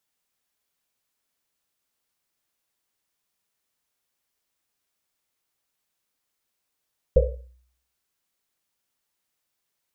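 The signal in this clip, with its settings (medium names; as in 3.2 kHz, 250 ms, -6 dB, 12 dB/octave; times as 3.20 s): Risset drum, pitch 62 Hz, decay 0.63 s, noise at 510 Hz, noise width 130 Hz, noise 50%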